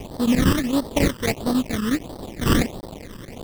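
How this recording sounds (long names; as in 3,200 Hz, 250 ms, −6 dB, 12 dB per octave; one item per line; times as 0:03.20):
a quantiser's noise floor 6 bits, dither triangular
chopped level 11 Hz, depth 65%, duty 85%
aliases and images of a low sample rate 1,500 Hz, jitter 20%
phaser sweep stages 12, 1.5 Hz, lowest notch 710–2,400 Hz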